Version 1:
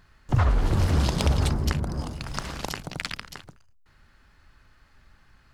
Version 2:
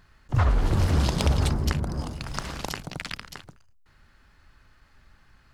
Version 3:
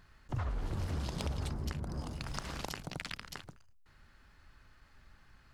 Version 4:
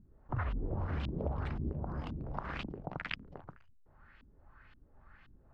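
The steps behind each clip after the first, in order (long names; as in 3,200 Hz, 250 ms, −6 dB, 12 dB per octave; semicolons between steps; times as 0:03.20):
level that may rise only so fast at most 460 dB per second
downward compressor 3 to 1, threshold −33 dBFS, peak gain reduction 12 dB; level −3.5 dB
auto-filter low-pass saw up 1.9 Hz 220–3,200 Hz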